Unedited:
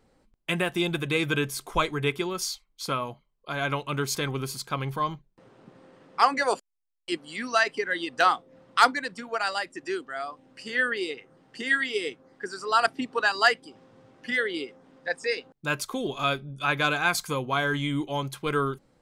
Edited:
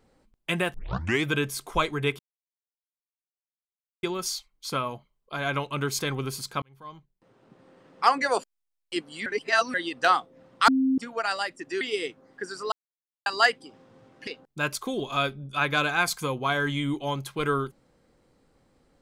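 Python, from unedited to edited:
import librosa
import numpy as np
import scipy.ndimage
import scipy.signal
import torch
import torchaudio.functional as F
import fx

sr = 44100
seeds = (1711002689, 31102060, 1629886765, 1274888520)

y = fx.edit(x, sr, fx.tape_start(start_s=0.74, length_s=0.5),
    fx.insert_silence(at_s=2.19, length_s=1.84),
    fx.fade_in_span(start_s=4.78, length_s=1.46),
    fx.reverse_span(start_s=7.42, length_s=0.48),
    fx.bleep(start_s=8.84, length_s=0.3, hz=264.0, db=-19.5),
    fx.cut(start_s=9.97, length_s=1.86),
    fx.silence(start_s=12.74, length_s=0.54),
    fx.cut(start_s=14.29, length_s=1.05), tone=tone)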